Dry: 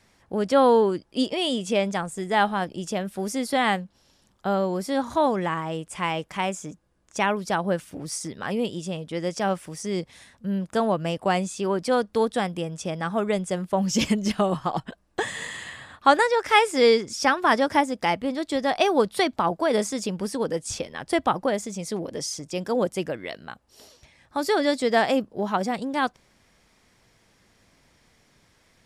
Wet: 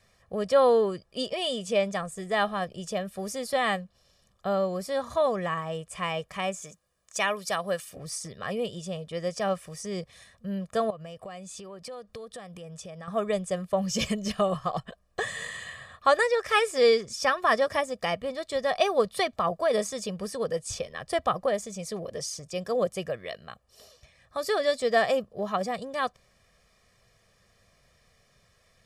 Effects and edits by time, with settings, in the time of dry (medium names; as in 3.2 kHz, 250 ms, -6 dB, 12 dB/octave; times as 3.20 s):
6.62–7.96 s: tilt EQ +2.5 dB/octave
10.90–13.08 s: compression 8:1, threshold -34 dBFS
whole clip: comb 1.7 ms, depth 74%; trim -5 dB